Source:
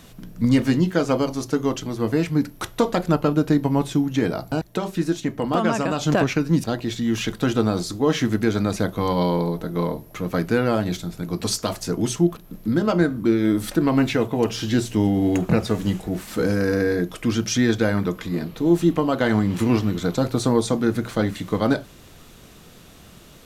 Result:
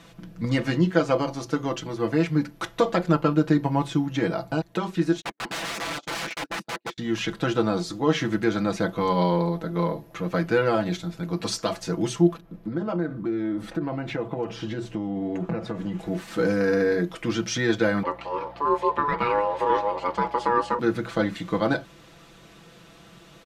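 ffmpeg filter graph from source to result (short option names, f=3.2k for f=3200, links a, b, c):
-filter_complex "[0:a]asettb=1/sr,asplit=3[a][b][c];[a]atrim=end=5.214[d];[b]atrim=start=5.21:end=6.98,asetpts=PTS-STARTPTS,afade=t=in:d=0.004:c=qsin,afade=t=out:st=1.766:d=0.004:c=qsin,highpass=f=220:w=0.5412,highpass=f=220:w=1.3066,agate=range=-42dB:threshold=-27dB:ratio=16:release=100:detection=peak,aeval=exprs='(mod(15*val(0)+1,2)-1)/15':c=same[e];[c]atrim=start=6.976[f];[d][e]acrossfade=d=0.004:c1=hsin:c2=qsin[g];[g][f]acrossfade=d=0.004:c1=qsin:c2=hsin,asettb=1/sr,asplit=3[h][i][j];[h]atrim=end=12.404[k];[i]atrim=start=12.4:end=15.99,asetpts=PTS-STARTPTS,afade=t=in:d=0.004:c=qsin,afade=t=out:st=3.586:d=0.004:c=qsin,highshelf=f=2.3k:g=-11.5,acompressor=threshold=-21dB:ratio=6:attack=3.2:release=140:knee=1:detection=peak[l];[j]atrim=start=15.986[m];[k][l]acrossfade=d=0.004:c1=hsin:c2=qsin[n];[n][m]acrossfade=d=0.004:c1=qsin:c2=hsin,asettb=1/sr,asplit=3[o][p][q];[o]atrim=end=18.034[r];[p]atrim=start=18.03:end=20.79,asetpts=PTS-STARTPTS,afade=t=in:d=0.004:c=qsin,afade=t=out:st=2.756:d=0.004:c=qsin,bass=f=250:g=0,treble=f=4k:g=-9,aeval=exprs='val(0)*sin(2*PI*720*n/s)':c=same,aeval=exprs='val(0)+0.00794*(sin(2*PI*60*n/s)+sin(2*PI*2*60*n/s)/2+sin(2*PI*3*60*n/s)/3+sin(2*PI*4*60*n/s)/4+sin(2*PI*5*60*n/s)/5)':c=same[s];[q]atrim=start=20.786[t];[r][s]acrossfade=d=0.004:c1=hsin:c2=qsin[u];[u][t]acrossfade=d=0.004:c1=qsin:c2=hsin,highpass=f=680:p=1,aemphasis=mode=reproduction:type=bsi,aecho=1:1:6:0.68"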